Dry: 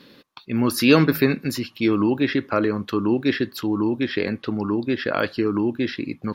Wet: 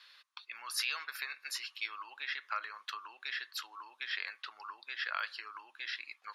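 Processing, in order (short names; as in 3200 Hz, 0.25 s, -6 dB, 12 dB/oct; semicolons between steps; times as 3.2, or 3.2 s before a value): LPF 11000 Hz 24 dB/oct; compressor 6:1, threshold -21 dBFS, peak gain reduction 11.5 dB; HPF 1100 Hz 24 dB/oct; gain -5 dB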